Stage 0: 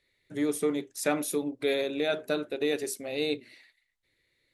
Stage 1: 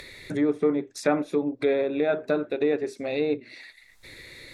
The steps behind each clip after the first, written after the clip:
upward compression, threshold −30 dBFS
notch filter 3,000 Hz, Q 6.8
treble cut that deepens with the level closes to 1,600 Hz, closed at −26 dBFS
level +5 dB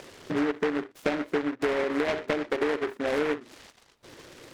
resonant band-pass 430 Hz, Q 0.58
downward compressor 10 to 1, threshold −27 dBFS, peak gain reduction 10.5 dB
short delay modulated by noise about 1,200 Hz, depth 0.16 ms
level +4 dB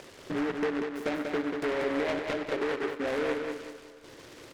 soft clipping −21.5 dBFS, distortion −16 dB
repeating echo 189 ms, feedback 36%, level −5 dB
on a send at −20 dB: convolution reverb RT60 4.3 s, pre-delay 27 ms
on the sum: level −2 dB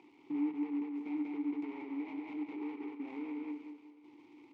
brickwall limiter −26.5 dBFS, peak gain reduction 6 dB
formant filter u
level +1 dB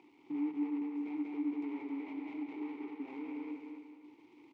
repeating echo 265 ms, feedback 29%, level −6.5 dB
level −1.5 dB

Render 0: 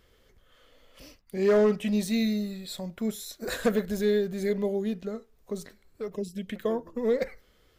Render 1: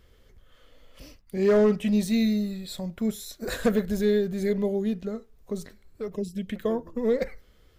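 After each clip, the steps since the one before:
low-shelf EQ 180 Hz +8 dB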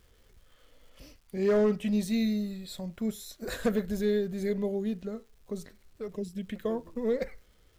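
surface crackle 590 per second −52 dBFS
level −4.5 dB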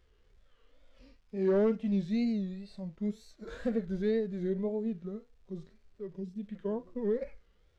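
harmonic and percussive parts rebalanced percussive −15 dB
high-frequency loss of the air 99 metres
tape wow and flutter 140 cents
level −2 dB

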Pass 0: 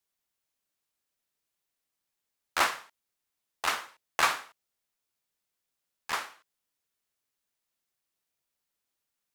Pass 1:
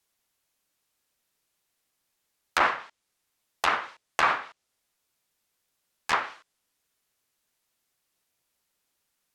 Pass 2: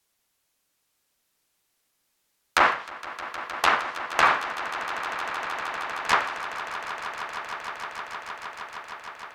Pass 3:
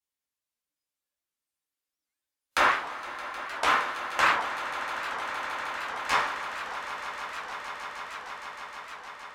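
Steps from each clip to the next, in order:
brickwall limiter −17 dBFS, peak gain reduction 5.5 dB; treble cut that deepens with the level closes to 2,100 Hz, closed at −29 dBFS; level +8 dB
echo that builds up and dies away 155 ms, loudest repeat 8, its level −15.5 dB; level +3.5 dB
noise reduction from a noise print of the clip's start 15 dB; coupled-rooms reverb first 0.42 s, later 4.5 s, from −21 dB, DRR −3 dB; wow of a warped record 78 rpm, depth 250 cents; level −7 dB

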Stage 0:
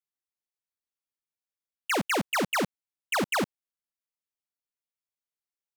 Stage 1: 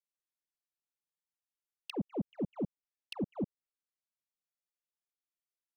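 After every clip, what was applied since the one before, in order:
treble cut that deepens with the level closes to 390 Hz, closed at −29.5 dBFS
flanger swept by the level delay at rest 5.8 ms, full sweep at −33 dBFS
level −3.5 dB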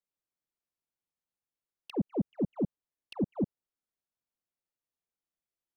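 tilt shelving filter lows +5.5 dB, about 1,200 Hz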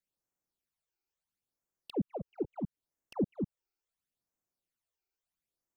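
downward compressor 3 to 1, threshold −33 dBFS, peak gain reduction 6.5 dB
all-pass phaser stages 12, 0.74 Hz, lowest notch 180–4,100 Hz
level +3.5 dB

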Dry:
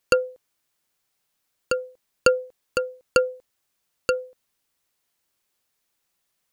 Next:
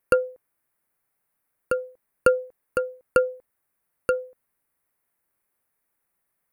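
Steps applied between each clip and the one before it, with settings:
flat-topped bell 4,600 Hz −15 dB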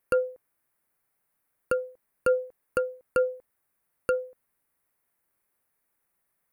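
brickwall limiter −14 dBFS, peak gain reduction 9 dB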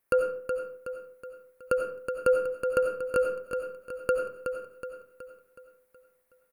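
repeating echo 371 ms, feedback 48%, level −7 dB
convolution reverb RT60 0.50 s, pre-delay 49 ms, DRR 5 dB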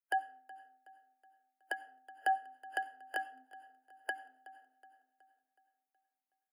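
frequency shifter +260 Hz
dynamic equaliser 2,700 Hz, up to +4 dB, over −43 dBFS, Q 0.83
noise reduction from a noise print of the clip's start 14 dB
level −8.5 dB

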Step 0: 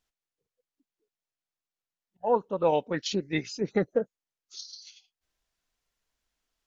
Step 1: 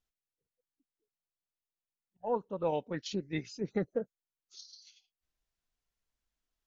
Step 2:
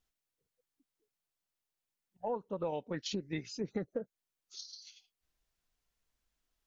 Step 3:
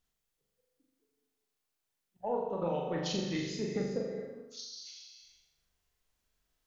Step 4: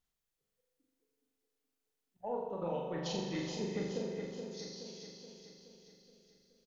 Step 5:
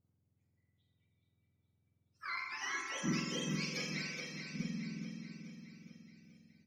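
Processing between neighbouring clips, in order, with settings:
low-shelf EQ 240 Hz +7 dB; level −9 dB
downward compressor 4 to 1, threshold −38 dBFS, peak gain reduction 10.5 dB; level +4 dB
on a send: flutter between parallel walls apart 7.1 metres, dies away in 0.79 s; on the sum: reverb whose tail is shaped and stops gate 450 ms flat, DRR 5.5 dB
repeating echo 424 ms, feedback 54%, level −7 dB; level −4.5 dB
frequency axis turned over on the octave scale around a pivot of 1,000 Hz; harmonic generator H 2 −26 dB, 6 −42 dB, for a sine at −26 dBFS; level +2.5 dB

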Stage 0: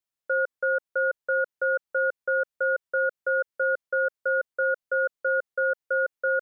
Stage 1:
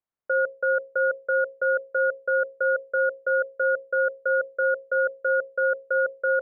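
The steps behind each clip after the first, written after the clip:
low-pass filter 1,500 Hz
mains-hum notches 60/120/180/240/300/360/420/480/540 Hz
level +3.5 dB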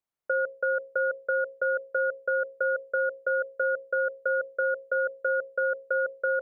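downward compressor 3 to 1, threshold −24 dBFS, peak gain reduction 4.5 dB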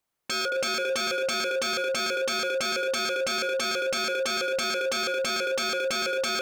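echo with a time of its own for lows and highs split 1,100 Hz, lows 222 ms, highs 115 ms, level −8.5 dB
wave folding −32 dBFS
level +9 dB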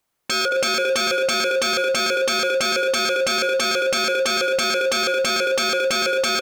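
single-tap delay 211 ms −23 dB
level +7 dB

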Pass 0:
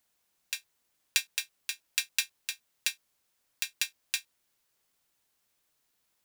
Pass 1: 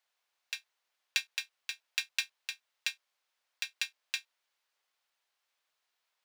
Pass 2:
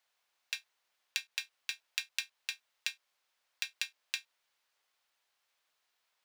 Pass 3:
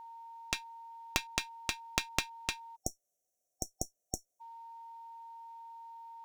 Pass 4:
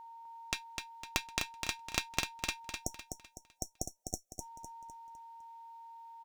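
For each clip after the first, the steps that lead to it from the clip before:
three-way crossover with the lows and the highs turned down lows −22 dB, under 520 Hz, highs −13 dB, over 5,300 Hz; level −1 dB
downward compressor 6 to 1, threshold −34 dBFS, peak gain reduction 9.5 dB; level +2.5 dB
harmonic generator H 4 −7 dB, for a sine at −11 dBFS; steady tone 920 Hz −48 dBFS; time-frequency box erased 0:02.76–0:04.41, 760–5,500 Hz; level +1.5 dB
repeating echo 253 ms, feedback 40%, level −5.5 dB; level −1.5 dB

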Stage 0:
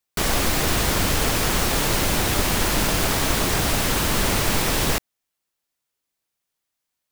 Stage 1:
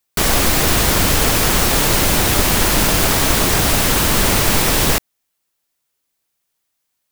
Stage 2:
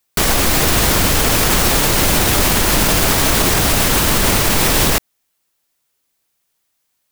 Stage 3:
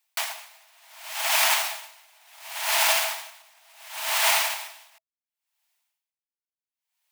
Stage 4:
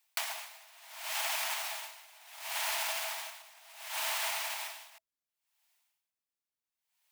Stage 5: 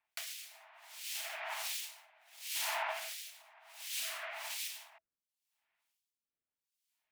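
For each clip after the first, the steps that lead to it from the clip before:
high-shelf EQ 8,700 Hz +4 dB; level +5.5 dB
boost into a limiter +7 dB; level −3 dB
Chebyshev high-pass with heavy ripple 630 Hz, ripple 6 dB; tremolo with a sine in dB 0.7 Hz, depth 37 dB
downward compressor 16 to 1, threshold −31 dBFS, peak gain reduction 15 dB
two-band tremolo in antiphase 1.4 Hz, depth 100%, crossover 2,400 Hz; rotating-speaker cabinet horn 1 Hz; level +4 dB

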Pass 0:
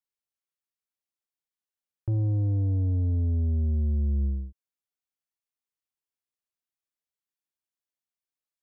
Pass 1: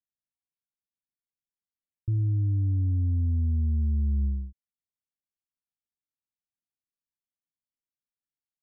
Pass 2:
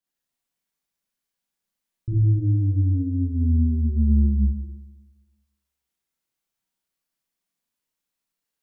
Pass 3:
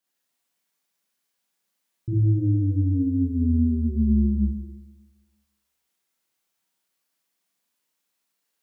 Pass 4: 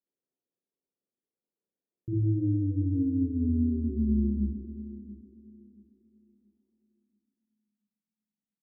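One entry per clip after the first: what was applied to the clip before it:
inverse Chebyshev low-pass filter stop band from 580 Hz, stop band 40 dB
parametric band 88 Hz −12 dB 0.28 octaves; four-comb reverb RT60 1.2 s, combs from 33 ms, DRR −7.5 dB; level +3.5 dB
high-pass filter 250 Hz 6 dB per octave; level +6.5 dB
feedback echo with a high-pass in the loop 681 ms, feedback 34%, high-pass 160 Hz, level −12.5 dB; low-pass filter sweep 420 Hz → 200 Hz, 0:06.77–0:07.83; level −7.5 dB

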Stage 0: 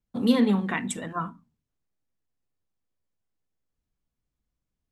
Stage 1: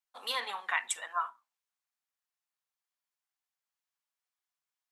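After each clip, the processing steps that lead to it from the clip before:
high-pass filter 820 Hz 24 dB per octave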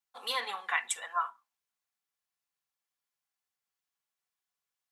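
notch comb filter 310 Hz
level +2 dB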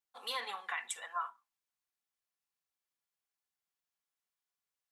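brickwall limiter −21.5 dBFS, peak gain reduction 7 dB
level −4 dB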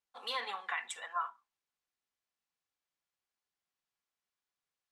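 high-frequency loss of the air 57 metres
level +2 dB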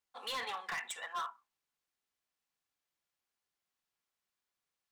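hard clipping −36 dBFS, distortion −8 dB
level +1.5 dB

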